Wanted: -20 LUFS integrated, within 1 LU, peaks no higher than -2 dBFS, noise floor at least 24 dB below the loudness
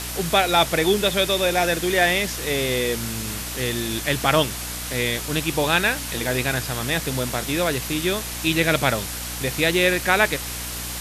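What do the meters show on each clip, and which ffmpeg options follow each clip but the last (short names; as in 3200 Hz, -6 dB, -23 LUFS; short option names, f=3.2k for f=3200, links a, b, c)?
hum 60 Hz; harmonics up to 300 Hz; hum level -34 dBFS; noise floor -31 dBFS; noise floor target -46 dBFS; loudness -21.5 LUFS; peak -2.5 dBFS; loudness target -20.0 LUFS
-> -af "bandreject=f=60:t=h:w=4,bandreject=f=120:t=h:w=4,bandreject=f=180:t=h:w=4,bandreject=f=240:t=h:w=4,bandreject=f=300:t=h:w=4"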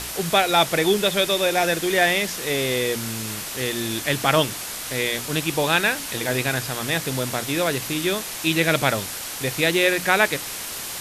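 hum none; noise floor -32 dBFS; noise floor target -46 dBFS
-> -af "afftdn=nr=14:nf=-32"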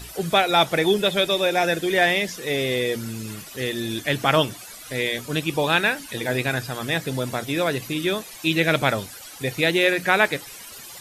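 noise floor -41 dBFS; noise floor target -46 dBFS
-> -af "afftdn=nr=6:nf=-41"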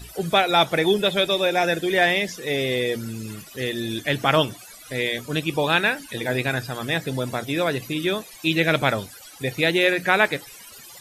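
noise floor -44 dBFS; noise floor target -47 dBFS
-> -af "afftdn=nr=6:nf=-44"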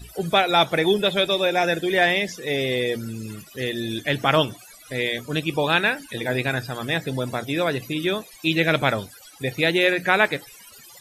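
noise floor -47 dBFS; loudness -22.5 LUFS; peak -2.0 dBFS; loudness target -20.0 LUFS
-> -af "volume=2.5dB,alimiter=limit=-2dB:level=0:latency=1"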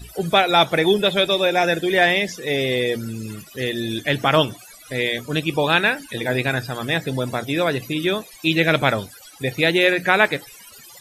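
loudness -20.0 LUFS; peak -2.0 dBFS; noise floor -44 dBFS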